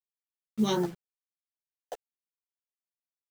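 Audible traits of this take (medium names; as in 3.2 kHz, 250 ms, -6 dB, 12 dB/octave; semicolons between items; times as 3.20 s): phasing stages 2, 2.8 Hz, lowest notch 760–2700 Hz; a quantiser's noise floor 8-bit, dither none; random-step tremolo; a shimmering, thickened sound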